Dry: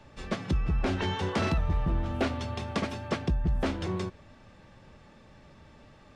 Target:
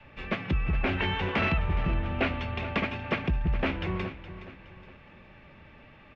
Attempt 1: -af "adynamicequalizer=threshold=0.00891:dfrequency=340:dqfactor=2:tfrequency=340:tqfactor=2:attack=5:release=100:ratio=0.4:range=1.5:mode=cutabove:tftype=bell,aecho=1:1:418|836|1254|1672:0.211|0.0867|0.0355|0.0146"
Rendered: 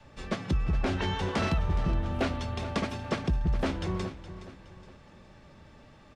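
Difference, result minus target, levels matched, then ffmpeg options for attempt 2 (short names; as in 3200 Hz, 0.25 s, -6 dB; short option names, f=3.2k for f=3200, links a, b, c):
2000 Hz band -5.5 dB
-af "adynamicequalizer=threshold=0.00891:dfrequency=340:dqfactor=2:tfrequency=340:tqfactor=2:attack=5:release=100:ratio=0.4:range=1.5:mode=cutabove:tftype=bell,lowpass=f=2.5k:t=q:w=3,aecho=1:1:418|836|1254|1672:0.211|0.0867|0.0355|0.0146"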